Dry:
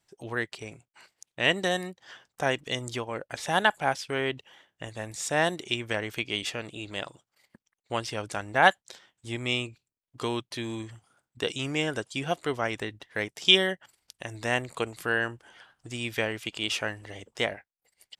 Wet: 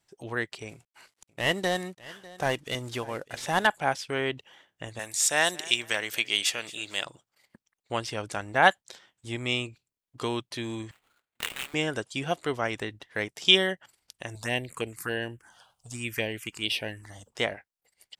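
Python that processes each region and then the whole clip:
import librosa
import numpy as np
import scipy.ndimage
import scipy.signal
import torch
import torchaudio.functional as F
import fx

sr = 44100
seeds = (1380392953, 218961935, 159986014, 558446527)

y = fx.chain(x, sr, fx.cvsd(bps=64000),
    fx.echo_single(ms=598, db=-20.0), at=(0.69, 3.67))
y = fx.chain(y, sr, fx.tilt_eq(slope=3.5),
    fx.echo_feedback(ms=223, feedback_pct=30, wet_db=-20.0), at=(4.99, 7.05))
y = fx.chain(y, sr, fx.highpass(hz=1500.0, slope=12),
    fx.sample_hold(seeds[0], rate_hz=5600.0, jitter_pct=20), at=(10.91, 11.74))
y = fx.chain(y, sr, fx.high_shelf(hz=5100.0, db=8.0),
    fx.env_phaser(low_hz=260.0, high_hz=1300.0, full_db=-25.0), at=(14.35, 17.3))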